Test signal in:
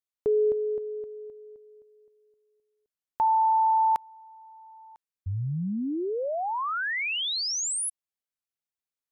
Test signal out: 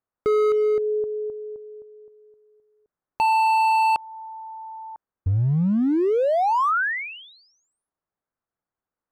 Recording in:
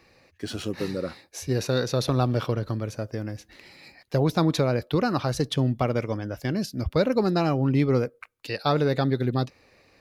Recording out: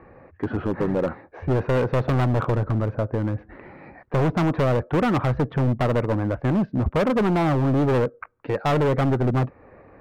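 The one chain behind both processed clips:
low-pass filter 1,500 Hz 24 dB per octave
in parallel at −0.5 dB: downward compressor 8 to 1, threshold −35 dBFS
on the sum: hard clipping −24 dBFS
level +6.5 dB

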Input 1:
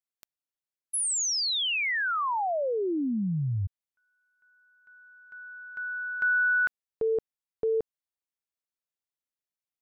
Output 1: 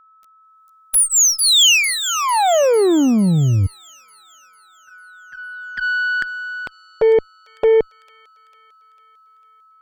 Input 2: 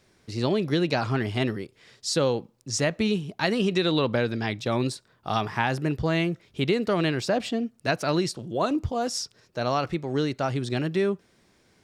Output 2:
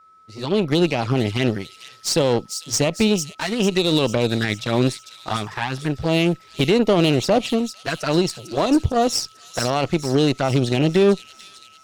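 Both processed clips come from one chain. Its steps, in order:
low-shelf EQ 370 Hz −3 dB
automatic gain control gain up to 16 dB
brickwall limiter −7 dBFS
flanger swept by the level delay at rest 11.6 ms, full sweep at −14 dBFS
harmonic generator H 4 −23 dB, 7 −25 dB, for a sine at −7 dBFS
steady tone 1,300 Hz −49 dBFS
on a send: delay with a high-pass on its return 449 ms, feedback 52%, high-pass 5,200 Hz, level −4 dB

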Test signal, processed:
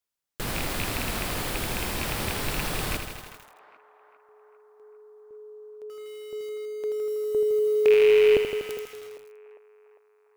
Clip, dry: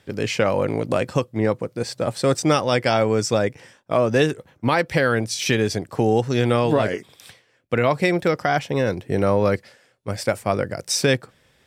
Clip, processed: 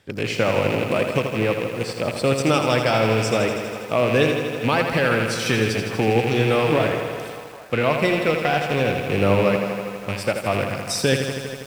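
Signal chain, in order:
loose part that buzzes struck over −28 dBFS, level −16 dBFS
dynamic equaliser 6,400 Hz, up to −5 dB, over −48 dBFS, Q 2.8
feedback echo with a band-pass in the loop 401 ms, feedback 70%, band-pass 1,000 Hz, level −14.5 dB
feedback echo at a low word length 81 ms, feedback 80%, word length 7 bits, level −7 dB
level −1.5 dB

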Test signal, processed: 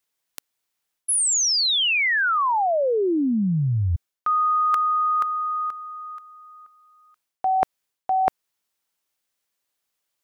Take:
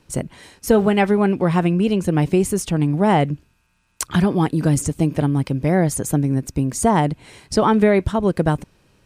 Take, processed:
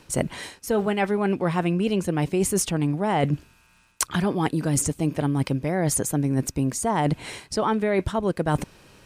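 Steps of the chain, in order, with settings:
low-shelf EQ 300 Hz −6 dB
reversed playback
downward compressor 10 to 1, threshold −28 dBFS
reversed playback
level +8.5 dB

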